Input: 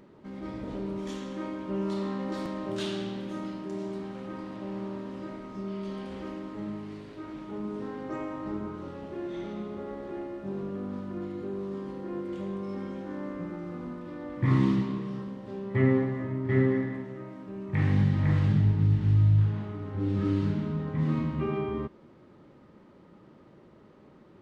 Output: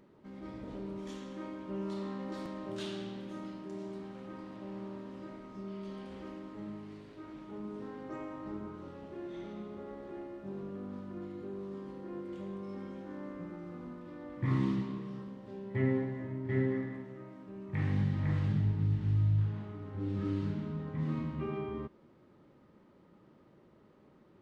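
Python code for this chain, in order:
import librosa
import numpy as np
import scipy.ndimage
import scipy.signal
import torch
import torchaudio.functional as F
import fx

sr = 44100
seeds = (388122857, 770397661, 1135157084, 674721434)

y = fx.notch(x, sr, hz=1200.0, q=6.3, at=(15.49, 16.72))
y = y * 10.0 ** (-7.0 / 20.0)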